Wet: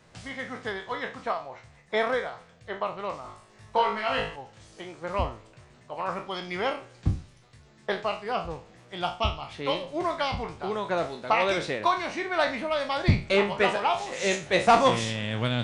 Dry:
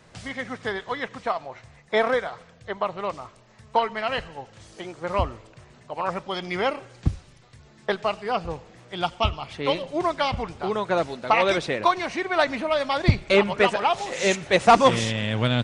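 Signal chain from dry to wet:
peak hold with a decay on every bin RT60 0.33 s
0:03.22–0:04.36: flutter between parallel walls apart 3.3 metres, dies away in 0.44 s
level −5 dB

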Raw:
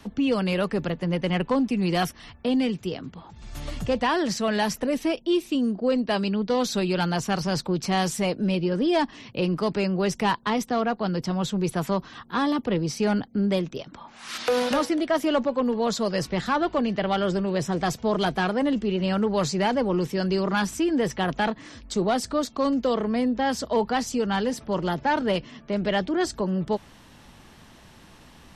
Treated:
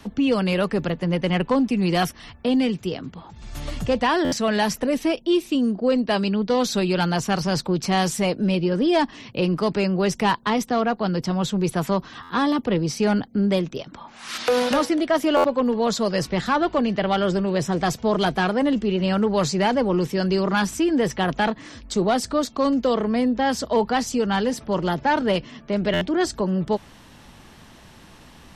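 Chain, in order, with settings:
buffer that repeats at 0:04.24/0:12.22/0:15.36/0:25.93, samples 512, times 6
level +3 dB

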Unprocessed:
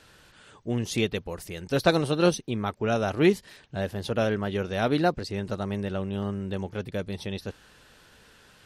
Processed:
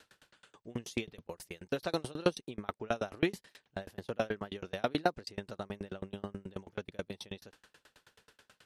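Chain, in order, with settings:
low-shelf EQ 160 Hz −10 dB
tremolo with a ramp in dB decaying 9.3 Hz, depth 33 dB

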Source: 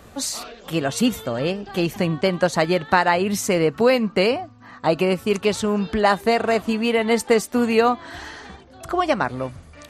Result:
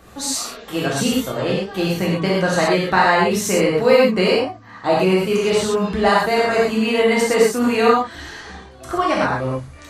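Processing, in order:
0:07.95–0:08.38: parametric band 880 Hz −7 dB 1.2 octaves
reverb whose tail is shaped and stops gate 150 ms flat, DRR −5.5 dB
level −3 dB

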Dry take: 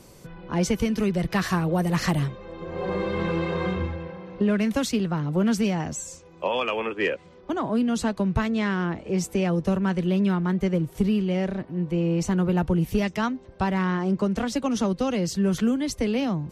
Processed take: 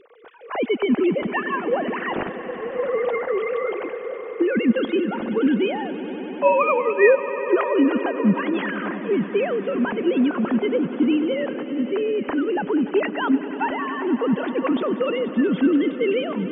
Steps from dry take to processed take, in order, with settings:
three sine waves on the formant tracks
echo that builds up and dies away 96 ms, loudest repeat 5, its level −17.5 dB
level +2.5 dB

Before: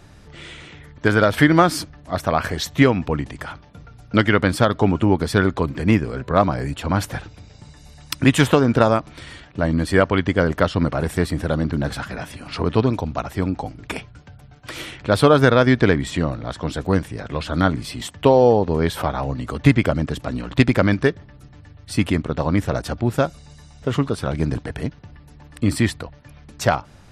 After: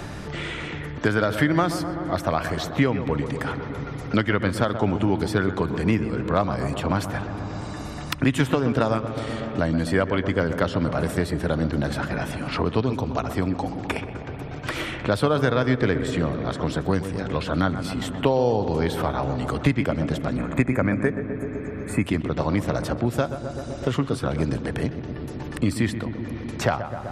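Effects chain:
gain on a spectral selection 0:20.37–0:22.06, 2,600–6,300 Hz −17 dB
on a send: feedback echo with a low-pass in the loop 127 ms, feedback 70%, low-pass 1,400 Hz, level −10.5 dB
on the sum: spring reverb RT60 3.9 s, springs 54 ms, chirp 25 ms, DRR 17.5 dB
multiband upward and downward compressor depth 70%
level −5 dB

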